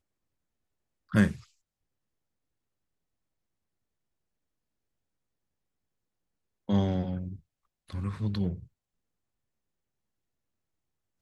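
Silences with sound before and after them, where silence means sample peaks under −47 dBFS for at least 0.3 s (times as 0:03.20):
0:01.44–0:06.69
0:07.39–0:07.89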